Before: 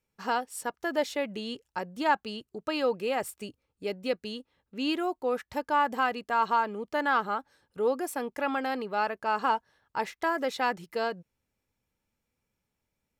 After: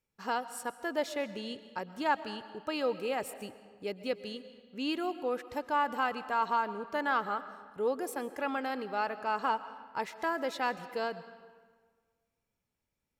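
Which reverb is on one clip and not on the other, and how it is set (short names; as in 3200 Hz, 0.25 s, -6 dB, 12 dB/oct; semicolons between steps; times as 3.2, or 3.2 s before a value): digital reverb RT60 1.6 s, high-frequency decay 0.75×, pre-delay 85 ms, DRR 13.5 dB; gain -4 dB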